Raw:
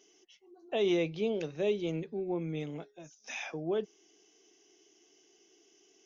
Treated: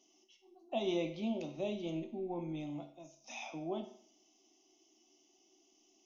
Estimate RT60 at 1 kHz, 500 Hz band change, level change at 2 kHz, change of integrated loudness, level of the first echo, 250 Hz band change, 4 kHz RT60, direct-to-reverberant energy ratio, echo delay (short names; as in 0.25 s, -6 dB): 0.55 s, -7.5 dB, -8.0 dB, -6.0 dB, none, -3.5 dB, 0.55 s, 5.0 dB, none